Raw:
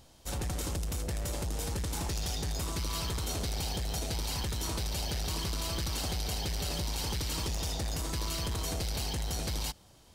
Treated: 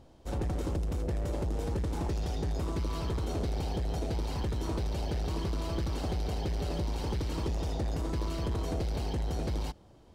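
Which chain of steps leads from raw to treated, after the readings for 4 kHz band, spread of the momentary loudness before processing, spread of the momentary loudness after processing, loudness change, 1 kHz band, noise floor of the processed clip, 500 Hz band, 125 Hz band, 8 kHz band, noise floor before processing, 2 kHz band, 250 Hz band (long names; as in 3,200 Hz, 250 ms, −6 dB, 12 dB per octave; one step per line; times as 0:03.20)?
−9.5 dB, 2 LU, 1 LU, 0.0 dB, +0.5 dB, −56 dBFS, +4.5 dB, +2.5 dB, −13.0 dB, −58 dBFS, −4.5 dB, +4.5 dB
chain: drawn EQ curve 180 Hz 0 dB, 350 Hz +4 dB, 14,000 Hz −20 dB
level +2.5 dB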